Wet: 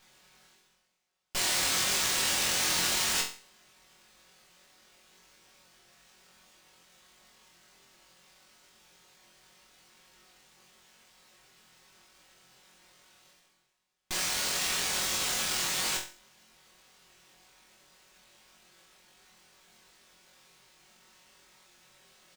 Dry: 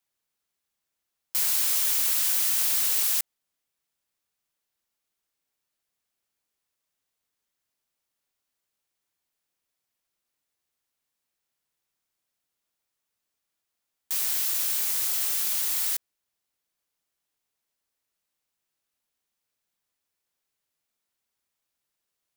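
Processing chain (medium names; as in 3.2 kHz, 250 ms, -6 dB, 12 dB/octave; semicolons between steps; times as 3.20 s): comb 5.4 ms, depth 74%; reverse; upward compressor, threshold -40 dBFS; reverse; careless resampling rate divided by 2×, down filtered, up hold; on a send: flutter echo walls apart 3.9 m, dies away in 0.39 s; on the sum: sliding maximum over 3 samples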